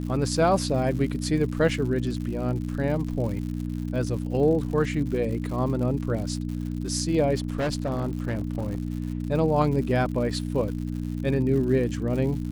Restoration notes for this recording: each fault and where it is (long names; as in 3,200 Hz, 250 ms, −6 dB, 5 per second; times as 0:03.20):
surface crackle 130 per second −34 dBFS
mains hum 60 Hz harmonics 5 −30 dBFS
0:07.37–0:09.25: clipping −22.5 dBFS